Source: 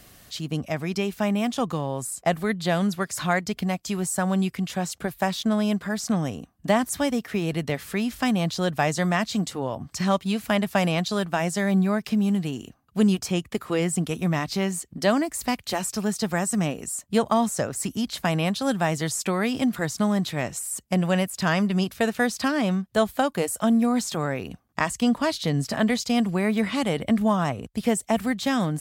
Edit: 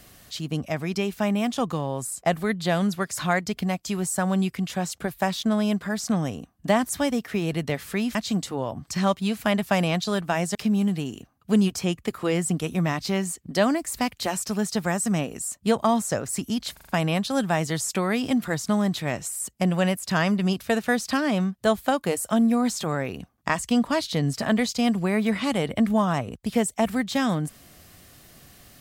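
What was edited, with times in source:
0:08.15–0:09.19: remove
0:11.59–0:12.02: remove
0:18.20: stutter 0.04 s, 5 plays

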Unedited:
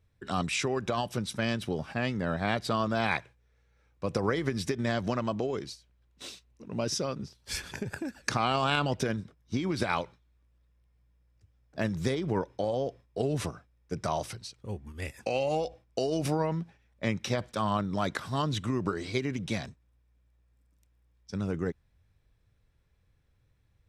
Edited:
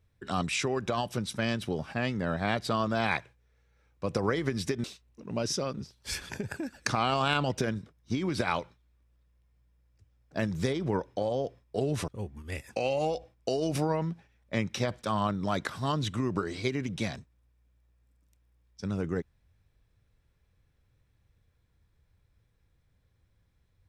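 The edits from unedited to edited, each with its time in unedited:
0:04.84–0:06.26: remove
0:13.50–0:14.58: remove

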